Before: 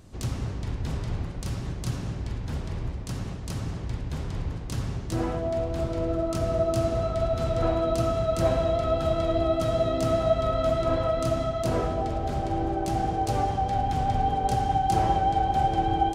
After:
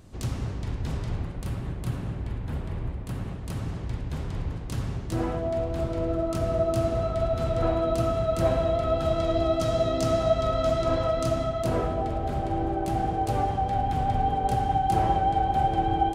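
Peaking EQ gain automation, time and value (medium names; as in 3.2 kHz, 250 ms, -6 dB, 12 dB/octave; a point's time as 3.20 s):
peaking EQ 5.7 kHz 1.1 oct
1.09 s -2 dB
1.57 s -13 dB
3.18 s -13 dB
3.81 s -4 dB
8.84 s -4 dB
9.38 s +4.5 dB
11.04 s +4.5 dB
11.89 s -7 dB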